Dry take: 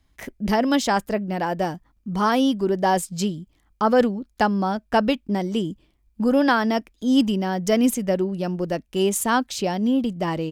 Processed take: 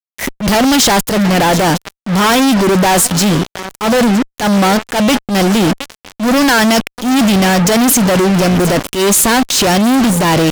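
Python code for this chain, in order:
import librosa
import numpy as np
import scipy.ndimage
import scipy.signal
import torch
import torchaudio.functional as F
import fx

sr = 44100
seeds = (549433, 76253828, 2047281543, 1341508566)

y = fx.high_shelf(x, sr, hz=2300.0, db=8.5)
y = fx.echo_swing(y, sr, ms=956, ratio=3, feedback_pct=38, wet_db=-24.0)
y = fx.fuzz(y, sr, gain_db=40.0, gate_db=-36.0)
y = fx.transient(y, sr, attack_db=-9, sustain_db=3)
y = y * 10.0 ** (4.5 / 20.0)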